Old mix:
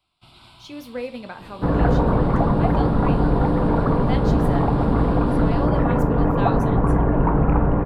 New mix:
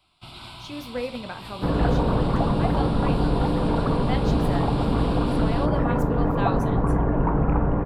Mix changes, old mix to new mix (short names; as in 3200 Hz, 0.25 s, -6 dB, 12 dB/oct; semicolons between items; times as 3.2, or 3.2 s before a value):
first sound +8.0 dB; second sound -3.5 dB